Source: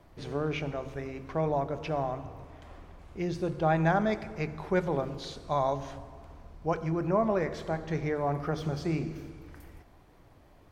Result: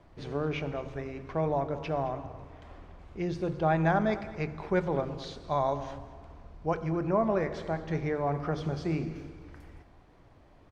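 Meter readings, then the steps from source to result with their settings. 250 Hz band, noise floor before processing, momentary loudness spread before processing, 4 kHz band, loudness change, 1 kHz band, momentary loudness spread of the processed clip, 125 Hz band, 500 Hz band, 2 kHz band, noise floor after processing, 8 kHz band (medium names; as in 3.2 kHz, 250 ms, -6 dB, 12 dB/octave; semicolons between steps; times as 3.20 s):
0.0 dB, -57 dBFS, 19 LU, -1.5 dB, 0.0 dB, 0.0 dB, 20 LU, 0.0 dB, 0.0 dB, -0.5 dB, -57 dBFS, no reading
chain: distance through air 64 m; echo from a far wall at 37 m, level -16 dB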